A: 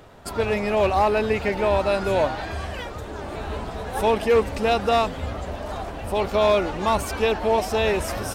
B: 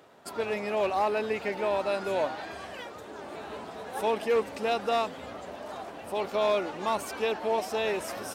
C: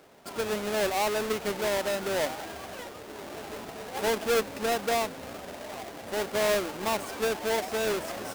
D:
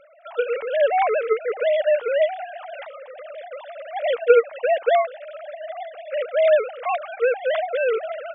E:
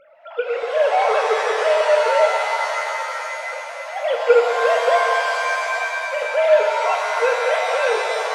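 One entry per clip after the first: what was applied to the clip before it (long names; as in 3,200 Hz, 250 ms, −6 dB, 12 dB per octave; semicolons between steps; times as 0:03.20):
high-pass filter 220 Hz 12 dB per octave; level −7 dB
each half-wave held at its own peak; level −4 dB
three sine waves on the formant tracks; level +8 dB
reverb with rising layers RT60 2.8 s, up +7 semitones, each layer −2 dB, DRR 1.5 dB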